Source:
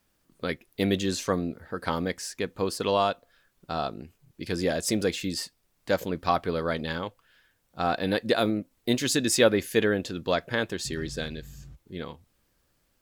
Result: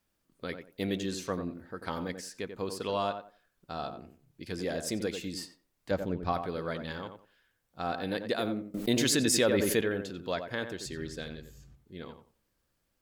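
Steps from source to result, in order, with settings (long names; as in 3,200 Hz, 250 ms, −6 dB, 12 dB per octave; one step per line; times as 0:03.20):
0:05.91–0:06.33: spectral tilt −2.5 dB per octave
tape delay 90 ms, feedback 25%, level −6.5 dB, low-pass 1,500 Hz
0:08.74–0:09.81: envelope flattener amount 70%
level −7.5 dB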